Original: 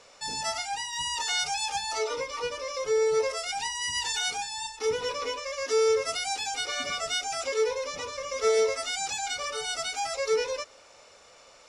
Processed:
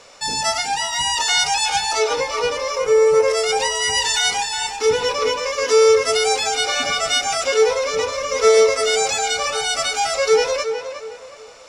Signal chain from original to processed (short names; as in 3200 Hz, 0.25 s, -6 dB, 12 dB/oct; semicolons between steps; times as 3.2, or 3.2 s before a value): 2.75–3.28 bell 4000 Hz -11 dB 0.96 oct; in parallel at -11 dB: crossover distortion -49 dBFS; on the sum: tape echo 0.365 s, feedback 36%, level -7.5 dB, low-pass 2900 Hz; gain +8.5 dB